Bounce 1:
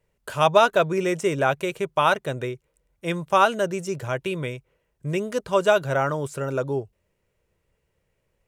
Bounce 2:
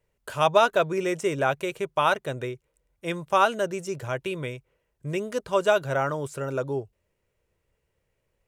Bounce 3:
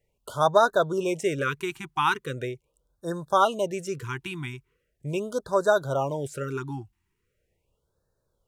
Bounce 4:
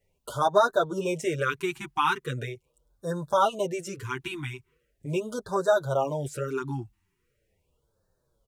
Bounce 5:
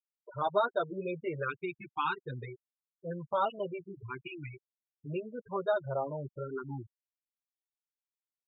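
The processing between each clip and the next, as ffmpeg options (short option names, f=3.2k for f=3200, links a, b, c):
-af "equalizer=f=180:w=3:g=-3.5,volume=-2.5dB"
-af "afftfilt=real='re*(1-between(b*sr/1024,510*pow(2600/510,0.5+0.5*sin(2*PI*0.4*pts/sr))/1.41,510*pow(2600/510,0.5+0.5*sin(2*PI*0.4*pts/sr))*1.41))':imag='im*(1-between(b*sr/1024,510*pow(2600/510,0.5+0.5*sin(2*PI*0.4*pts/sr))/1.41,510*pow(2600/510,0.5+0.5*sin(2*PI*0.4*pts/sr))*1.41))':win_size=1024:overlap=0.75"
-filter_complex "[0:a]asplit=2[a][b];[b]acompressor=threshold=-33dB:ratio=6,volume=-2.5dB[c];[a][c]amix=inputs=2:normalize=0,asplit=2[d][e];[e]adelay=7.1,afreqshift=-2[f];[d][f]amix=inputs=2:normalize=1"
-af "aresample=11025,aresample=44100,afftfilt=real='re*gte(hypot(re,im),0.0447)':imag='im*gte(hypot(re,im),0.0447)':win_size=1024:overlap=0.75,volume=-7.5dB"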